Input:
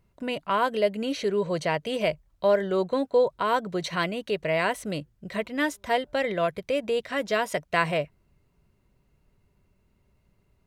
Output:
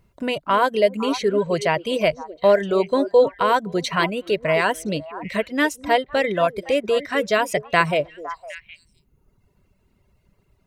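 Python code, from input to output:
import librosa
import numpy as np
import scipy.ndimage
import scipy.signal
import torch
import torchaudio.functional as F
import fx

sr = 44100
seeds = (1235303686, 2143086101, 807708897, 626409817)

y = fx.echo_stepped(x, sr, ms=254, hz=360.0, octaves=1.4, feedback_pct=70, wet_db=-7.5)
y = fx.dereverb_blind(y, sr, rt60_s=1.0)
y = y * 10.0 ** (6.5 / 20.0)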